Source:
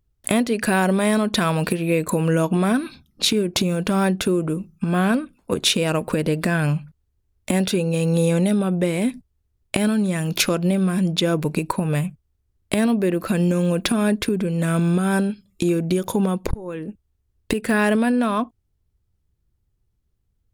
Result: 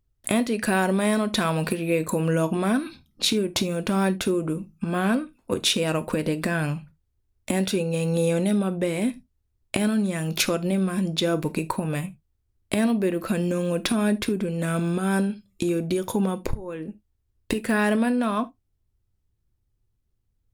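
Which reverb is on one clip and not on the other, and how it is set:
reverb whose tail is shaped and stops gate 100 ms falling, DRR 11 dB
level −3.5 dB

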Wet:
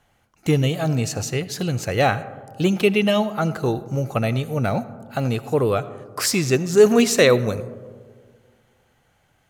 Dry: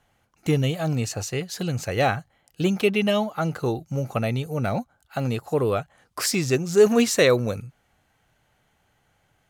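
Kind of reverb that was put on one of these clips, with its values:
comb and all-pass reverb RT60 1.8 s, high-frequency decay 0.25×, pre-delay 35 ms, DRR 15.5 dB
level +3 dB

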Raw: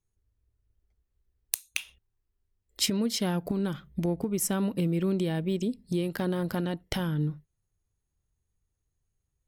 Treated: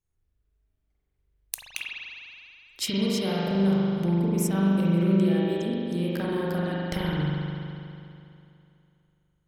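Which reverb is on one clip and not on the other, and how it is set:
spring reverb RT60 2.7 s, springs 41 ms, chirp 30 ms, DRR −6.5 dB
level −3.5 dB

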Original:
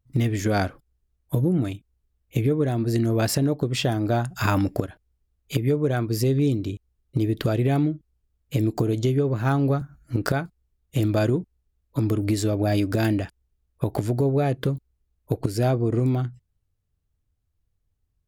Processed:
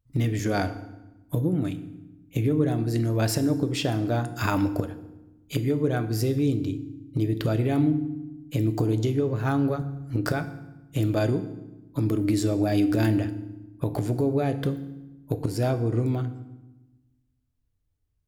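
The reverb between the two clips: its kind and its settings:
feedback delay network reverb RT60 1 s, low-frequency decay 1.55×, high-frequency decay 0.8×, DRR 9.5 dB
level −3 dB

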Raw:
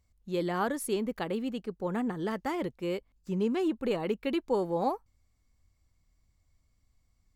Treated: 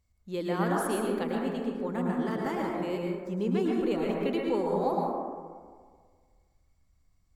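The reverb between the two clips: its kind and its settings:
dense smooth reverb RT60 1.7 s, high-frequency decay 0.3×, pre-delay 95 ms, DRR −2 dB
level −2.5 dB

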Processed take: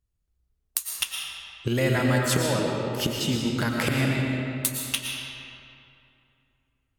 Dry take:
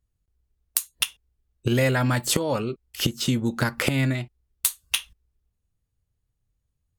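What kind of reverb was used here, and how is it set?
comb and all-pass reverb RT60 2.7 s, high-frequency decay 0.65×, pre-delay 75 ms, DRR −1 dB
level −3.5 dB

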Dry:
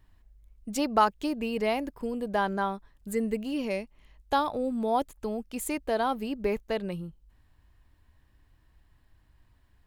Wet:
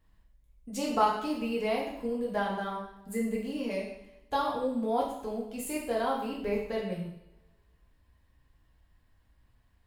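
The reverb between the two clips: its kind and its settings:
coupled-rooms reverb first 0.7 s, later 1.9 s, from −23 dB, DRR −4.5 dB
level −8 dB

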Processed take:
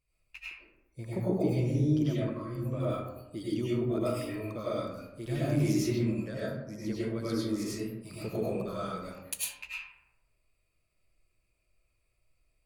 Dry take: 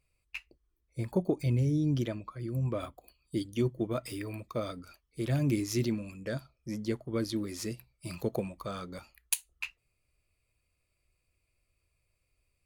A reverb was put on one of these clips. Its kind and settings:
comb and all-pass reverb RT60 1 s, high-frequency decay 0.4×, pre-delay 60 ms, DRR −8.5 dB
level −7.5 dB

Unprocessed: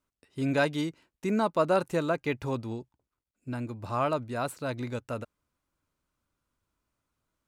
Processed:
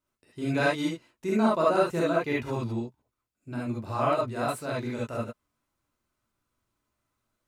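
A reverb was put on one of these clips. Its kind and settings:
reverb whose tail is shaped and stops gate 90 ms rising, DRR −5.5 dB
level −4 dB

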